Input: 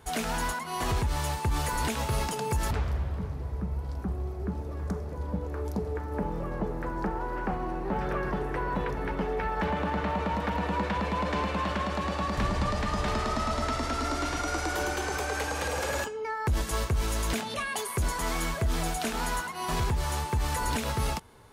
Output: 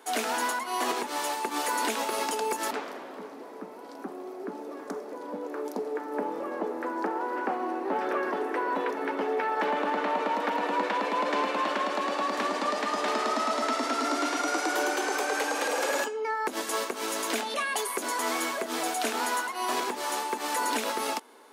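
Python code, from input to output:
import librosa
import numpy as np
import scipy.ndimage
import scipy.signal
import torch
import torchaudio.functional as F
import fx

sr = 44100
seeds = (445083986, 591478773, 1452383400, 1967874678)

y = scipy.signal.sosfilt(scipy.signal.ellip(4, 1.0, 60, 260.0, 'highpass', fs=sr, output='sos'), x)
y = F.gain(torch.from_numpy(y), 3.5).numpy()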